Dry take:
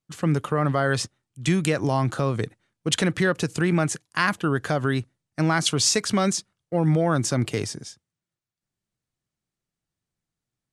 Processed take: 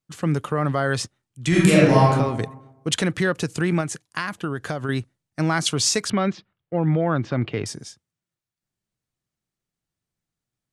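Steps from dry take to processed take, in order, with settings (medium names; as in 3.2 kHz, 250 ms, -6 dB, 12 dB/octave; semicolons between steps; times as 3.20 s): 1.48–2.06 s: reverb throw, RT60 1 s, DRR -8 dB; 3.80–4.89 s: compression, threshold -23 dBFS, peak gain reduction 7 dB; 6.10–7.66 s: low-pass 3.3 kHz 24 dB/octave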